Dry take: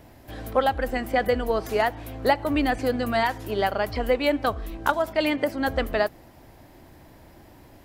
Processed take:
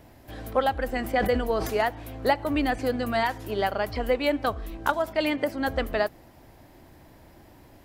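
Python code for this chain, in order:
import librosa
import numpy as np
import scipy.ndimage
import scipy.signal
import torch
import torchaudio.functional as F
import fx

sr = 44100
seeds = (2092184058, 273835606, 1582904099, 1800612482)

y = fx.sustainer(x, sr, db_per_s=63.0, at=(0.96, 1.75))
y = y * 10.0 ** (-2.0 / 20.0)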